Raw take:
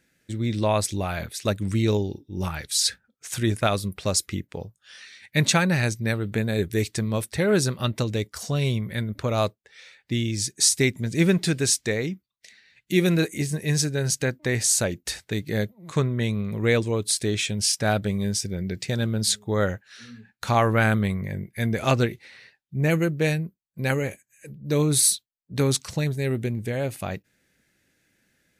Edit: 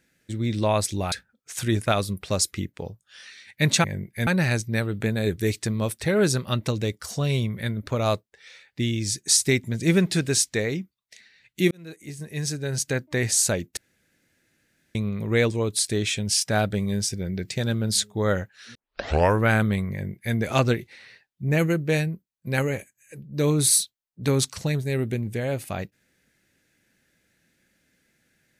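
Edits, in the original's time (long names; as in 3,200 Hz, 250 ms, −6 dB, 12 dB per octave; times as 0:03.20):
0:01.12–0:02.87: remove
0:13.03–0:14.43: fade in
0:15.09–0:16.27: fill with room tone
0:20.07: tape start 0.63 s
0:21.24–0:21.67: duplicate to 0:05.59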